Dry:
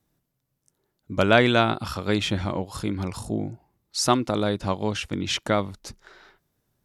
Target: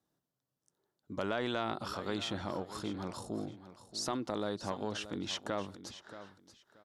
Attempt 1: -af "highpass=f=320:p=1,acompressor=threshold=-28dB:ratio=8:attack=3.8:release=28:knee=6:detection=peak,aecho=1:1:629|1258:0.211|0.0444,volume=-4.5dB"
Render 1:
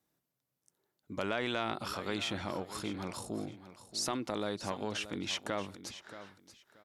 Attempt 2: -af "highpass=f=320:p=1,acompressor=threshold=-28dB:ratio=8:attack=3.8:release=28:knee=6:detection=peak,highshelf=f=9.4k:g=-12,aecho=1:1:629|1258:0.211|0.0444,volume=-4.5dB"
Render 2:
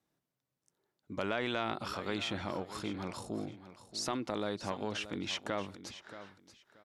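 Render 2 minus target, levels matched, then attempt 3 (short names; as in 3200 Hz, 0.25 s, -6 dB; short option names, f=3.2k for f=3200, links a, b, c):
2000 Hz band +2.5 dB
-af "highpass=f=320:p=1,equalizer=f=2.3k:w=2.7:g=-9.5,acompressor=threshold=-28dB:ratio=8:attack=3.8:release=28:knee=6:detection=peak,highshelf=f=9.4k:g=-12,aecho=1:1:629|1258:0.211|0.0444,volume=-4.5dB"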